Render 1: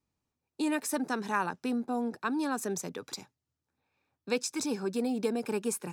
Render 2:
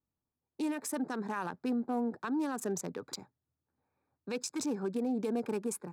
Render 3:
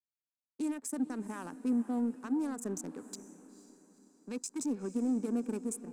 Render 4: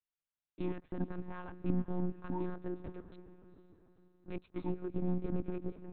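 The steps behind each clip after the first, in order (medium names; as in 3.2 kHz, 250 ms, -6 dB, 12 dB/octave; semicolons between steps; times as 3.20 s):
local Wiener filter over 15 samples; peak limiter -26 dBFS, peak gain reduction 9.5 dB; level rider gain up to 6 dB; trim -6 dB
power-law waveshaper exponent 1.4; ten-band graphic EQ 250 Hz +11 dB, 4 kHz -5 dB, 8 kHz +12 dB; echo that smears into a reverb 479 ms, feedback 43%, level -15 dB; trim -7 dB
monotone LPC vocoder at 8 kHz 180 Hz; trim -1.5 dB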